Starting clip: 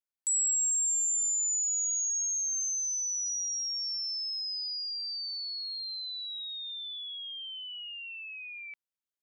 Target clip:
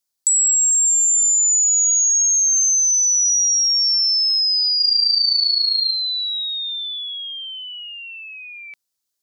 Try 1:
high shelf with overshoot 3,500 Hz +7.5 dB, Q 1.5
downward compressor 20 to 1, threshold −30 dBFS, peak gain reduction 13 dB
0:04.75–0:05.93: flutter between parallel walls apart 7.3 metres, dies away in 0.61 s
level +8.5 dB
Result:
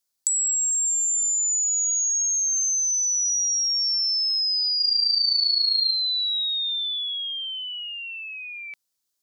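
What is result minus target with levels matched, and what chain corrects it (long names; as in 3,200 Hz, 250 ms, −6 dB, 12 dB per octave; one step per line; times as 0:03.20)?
downward compressor: peak gain reduction +7 dB
high shelf with overshoot 3,500 Hz +7.5 dB, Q 1.5
downward compressor 20 to 1, threshold −22.5 dBFS, peak gain reduction 5.5 dB
0:04.75–0:05.93: flutter between parallel walls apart 7.3 metres, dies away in 0.61 s
level +8.5 dB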